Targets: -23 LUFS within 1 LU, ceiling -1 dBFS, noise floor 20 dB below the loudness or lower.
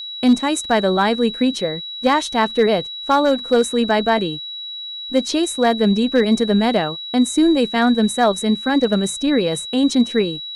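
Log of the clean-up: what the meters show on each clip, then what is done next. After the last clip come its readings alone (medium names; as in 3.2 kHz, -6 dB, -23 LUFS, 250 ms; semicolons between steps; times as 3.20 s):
clipped samples 0.5%; clipping level -7.0 dBFS; steady tone 3.9 kHz; tone level -28 dBFS; loudness -18.0 LUFS; peak level -7.0 dBFS; loudness target -23.0 LUFS
-> clip repair -7 dBFS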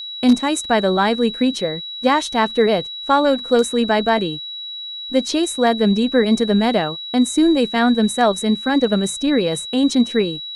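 clipped samples 0.0%; steady tone 3.9 kHz; tone level -28 dBFS
-> band-stop 3.9 kHz, Q 30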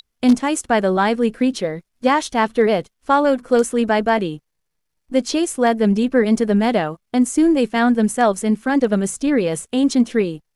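steady tone not found; loudness -18.0 LUFS; peak level -3.0 dBFS; loudness target -23.0 LUFS
-> trim -5 dB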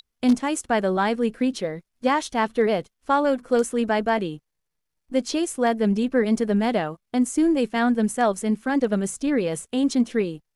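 loudness -23.0 LUFS; peak level -8.0 dBFS; noise floor -79 dBFS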